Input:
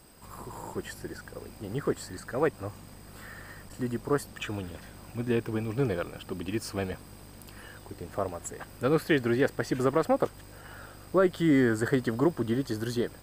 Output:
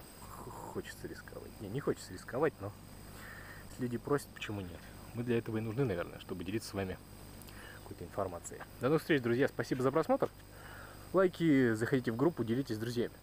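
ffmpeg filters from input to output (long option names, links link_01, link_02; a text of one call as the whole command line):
ffmpeg -i in.wav -af "adynamicequalizer=threshold=0.00112:dfrequency=7800:dqfactor=1.9:tfrequency=7800:tqfactor=1.9:attack=5:release=100:ratio=0.375:range=2:mode=cutabove:tftype=bell,acompressor=mode=upward:threshold=-38dB:ratio=2.5,volume=-5.5dB" out.wav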